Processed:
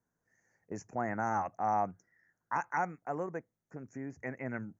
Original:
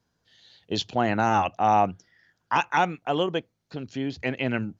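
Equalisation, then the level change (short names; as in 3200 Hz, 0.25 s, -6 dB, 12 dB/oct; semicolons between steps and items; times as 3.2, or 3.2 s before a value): Chebyshev band-stop 2000–6200 Hz, order 3; bell 73 Hz -7.5 dB 1 oct; dynamic EQ 340 Hz, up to -4 dB, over -35 dBFS, Q 0.93; -8.5 dB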